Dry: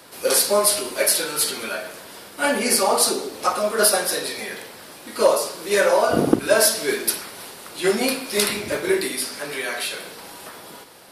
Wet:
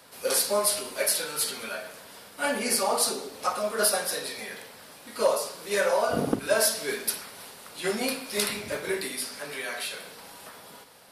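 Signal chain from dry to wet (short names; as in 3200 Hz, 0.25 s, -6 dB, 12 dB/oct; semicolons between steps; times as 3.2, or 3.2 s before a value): bell 340 Hz -12 dB 0.21 oct; gain -6.5 dB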